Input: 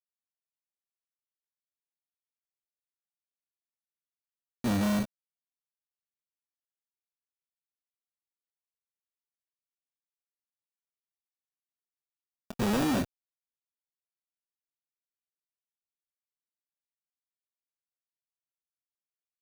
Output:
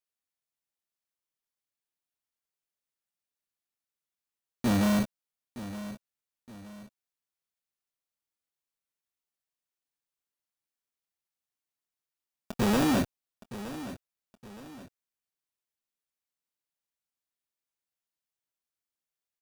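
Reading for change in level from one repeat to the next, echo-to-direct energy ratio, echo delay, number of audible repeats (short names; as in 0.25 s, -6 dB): -8.0 dB, -13.5 dB, 0.918 s, 2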